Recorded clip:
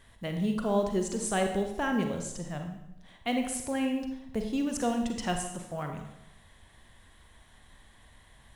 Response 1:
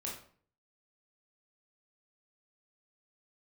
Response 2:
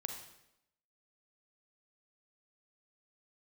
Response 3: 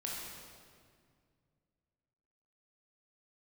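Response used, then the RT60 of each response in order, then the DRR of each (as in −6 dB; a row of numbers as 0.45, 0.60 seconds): 2; 0.50, 0.85, 2.1 seconds; −3.5, 4.0, −4.0 decibels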